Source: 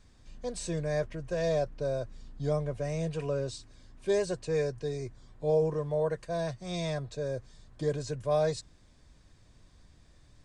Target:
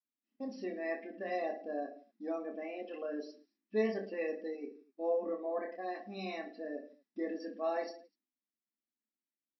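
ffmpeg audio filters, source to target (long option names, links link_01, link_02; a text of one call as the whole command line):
ffmpeg -i in.wav -af "afftfilt=real='re*between(b*sr/4096,180,5300)':imag='im*between(b*sr/4096,180,5300)':win_size=4096:overlap=0.75,agate=range=-33dB:threshold=-53dB:ratio=3:detection=peak,equalizer=frequency=250:width_type=o:width=1:gain=7,equalizer=frequency=500:width_type=o:width=1:gain=-9,equalizer=frequency=1000:width_type=o:width=1:gain=-4,equalizer=frequency=2000:width_type=o:width=1:gain=3,equalizer=frequency=4000:width_type=o:width=1:gain=-7,aecho=1:1:30|69|119.7|185.6|271.3:0.631|0.398|0.251|0.158|0.1,afftdn=noise_reduction=15:noise_floor=-45,asetrate=48000,aresample=44100,volume=-2.5dB" out.wav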